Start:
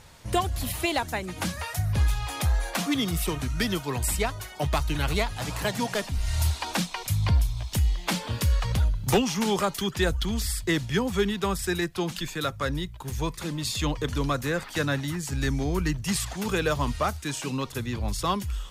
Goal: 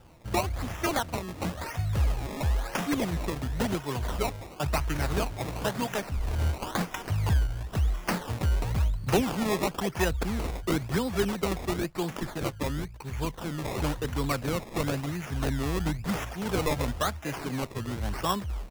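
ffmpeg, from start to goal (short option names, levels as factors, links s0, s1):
-af "adynamicequalizer=threshold=0.00398:dfrequency=3600:dqfactor=1.8:tfrequency=3600:tqfactor=1.8:attack=5:release=100:ratio=0.375:range=2:mode=boostabove:tftype=bell,aresample=16000,aresample=44100,acrusher=samples=20:mix=1:aa=0.000001:lfo=1:lforange=20:lforate=0.97,volume=0.75"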